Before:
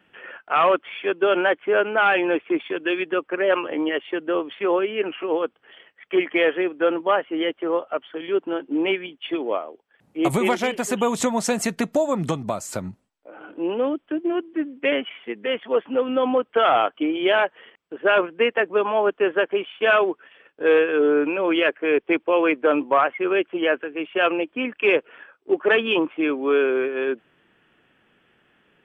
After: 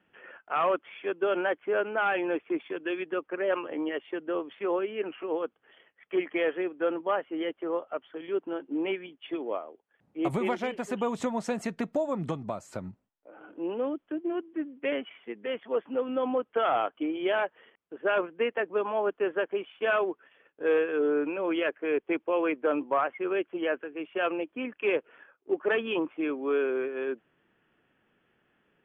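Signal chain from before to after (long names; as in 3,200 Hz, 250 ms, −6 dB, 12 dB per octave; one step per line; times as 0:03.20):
low-pass filter 2,100 Hz 6 dB per octave
level −7.5 dB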